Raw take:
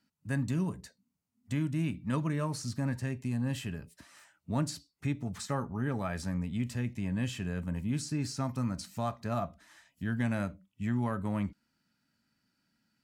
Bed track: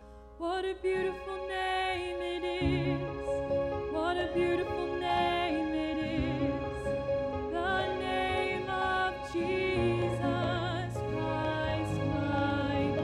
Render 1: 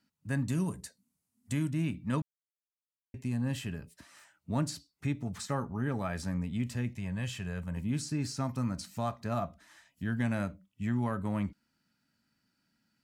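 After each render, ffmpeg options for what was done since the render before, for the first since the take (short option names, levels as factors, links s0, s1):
-filter_complex "[0:a]asettb=1/sr,asplit=3[s0][s1][s2];[s0]atrim=end=0.494[s3];[s1]atrim=start=0.49:end=1.7,asetpts=PTS-STARTPTS,afade=t=in:d=0.004:c=qsin,afade=t=out:st=1.206:d=0.004:c=qsin,equalizer=f=10000:w=0.84:g=11[s4];[s2]atrim=start=1.696[s5];[s3][s4]acrossfade=d=0.004:c1=hsin:c2=qsin[s6];[s6][s5]acrossfade=d=0.004:c1=qsin:c2=hsin,asettb=1/sr,asplit=3[s7][s8][s9];[s7]atrim=end=6.964[s10];[s8]atrim=start=6.96:end=7.77,asetpts=PTS-STARTPTS,afade=t=in:d=0.004:c=qsin,afade=t=out:st=0.806:d=0.004:c=qsin,equalizer=f=280:t=o:w=0.77:g=-10.5[s11];[s9]atrim=start=7.766[s12];[s10][s11]acrossfade=d=0.004:c1=hsin:c2=qsin[s13];[s13][s12]acrossfade=d=0.004:c1=qsin:c2=hsin,asplit=3[s14][s15][s16];[s14]atrim=end=2.22,asetpts=PTS-STARTPTS,afade=t=out:st=2.216:d=0.004:c=hsin[s17];[s15]atrim=start=2.22:end=3.14,asetpts=PTS-STARTPTS,volume=0[s18];[s16]atrim=start=3.14,asetpts=PTS-STARTPTS,afade=t=in:d=0.004:c=hsin[s19];[s17][s18][s19]concat=n=3:v=0:a=1"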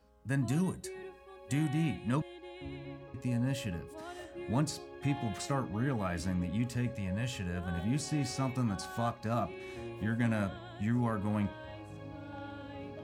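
-filter_complex "[1:a]volume=0.188[s0];[0:a][s0]amix=inputs=2:normalize=0"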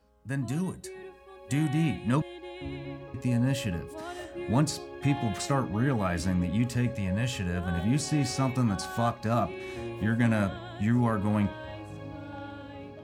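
-af "dynaudnorm=f=580:g=5:m=2"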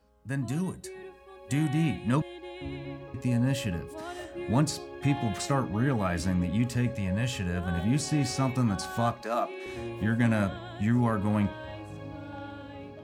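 -filter_complex "[0:a]asettb=1/sr,asplit=3[s0][s1][s2];[s0]atrim=end=9.224[s3];[s1]atrim=start=9.22:end=9.66,asetpts=PTS-STARTPTS,afade=t=in:d=0.004:c=qsin,afade=t=out:st=0.436:d=0.004:c=qsin,highpass=f=300:w=0.5412,highpass=f=300:w=1.3066[s4];[s2]atrim=start=9.656[s5];[s3][s4]acrossfade=d=0.004:c1=hsin:c2=qsin[s6];[s6][s5]acrossfade=d=0.004:c1=qsin:c2=hsin"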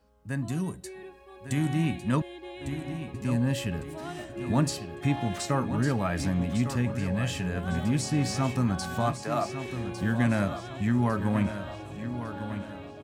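-af "aecho=1:1:1153|2306|3459|4612:0.316|0.123|0.0481|0.0188"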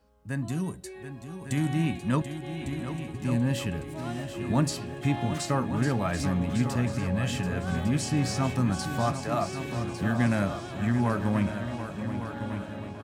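-af "aecho=1:1:735|1470|2205|2940|3675|4410:0.299|0.155|0.0807|0.042|0.0218|0.0114"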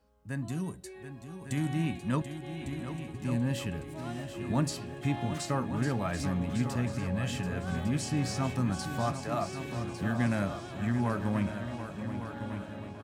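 -af "volume=0.631"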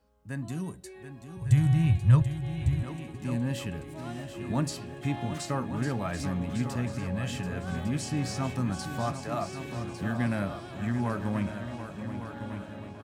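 -filter_complex "[0:a]asettb=1/sr,asplit=3[s0][s1][s2];[s0]atrim=end=1.374[s3];[s1]atrim=start=1.37:end=2.83,asetpts=PTS-STARTPTS,afade=t=in:d=0.004:c=qsin,afade=t=out:st=1.456:d=0.004:c=qsin,lowshelf=f=160:t=q:w=3:g=13.5[s4];[s2]atrim=start=2.826[s5];[s3][s4]acrossfade=d=0.004:c1=hsin:c2=qsin[s6];[s6][s5]acrossfade=d=0.004:c1=qsin:c2=hsin,asettb=1/sr,asplit=3[s7][s8][s9];[s7]atrim=end=10.174[s10];[s8]atrim=start=10.17:end=10.73,asetpts=PTS-STARTPTS,afade=t=in:d=0.004:c=qsin,afade=t=out:st=0.556:d=0.004:c=qsin,equalizer=f=6600:w=3:g=-9.5[s11];[s9]atrim=start=10.726[s12];[s10][s11]acrossfade=d=0.004:c1=hsin:c2=qsin[s13];[s13][s12]acrossfade=d=0.004:c1=qsin:c2=hsin"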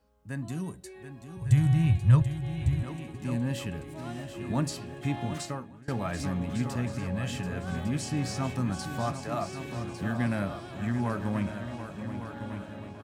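-filter_complex "[0:a]asplit=2[s0][s1];[s0]atrim=end=5.88,asetpts=PTS-STARTPTS,afade=t=out:st=5.41:d=0.47:c=qua:silence=0.0668344[s2];[s1]atrim=start=5.88,asetpts=PTS-STARTPTS,afade=t=in:d=0.004:c=hsin:silence=0.0668344[s3];[s2][s3]concat=n=2:v=0:a=1"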